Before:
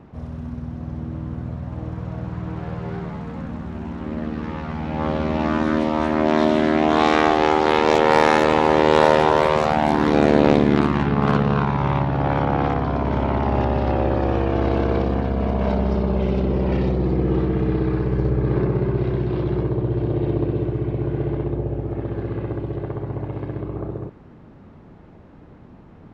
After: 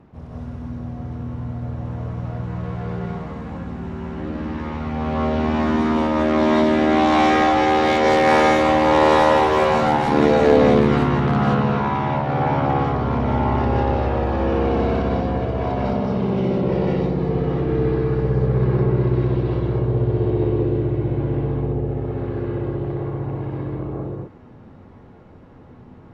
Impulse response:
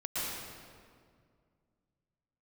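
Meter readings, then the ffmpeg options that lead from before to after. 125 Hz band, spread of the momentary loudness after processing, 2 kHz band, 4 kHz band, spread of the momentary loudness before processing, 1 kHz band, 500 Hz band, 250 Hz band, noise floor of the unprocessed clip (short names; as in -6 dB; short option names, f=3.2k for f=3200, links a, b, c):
+1.5 dB, 14 LU, +1.0 dB, +0.5 dB, 14 LU, +1.5 dB, +1.0 dB, +0.5 dB, -45 dBFS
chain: -filter_complex "[1:a]atrim=start_sample=2205,atrim=end_sample=6174,asetrate=32193,aresample=44100[a];[0:a][a]afir=irnorm=-1:irlink=0,volume=-2dB"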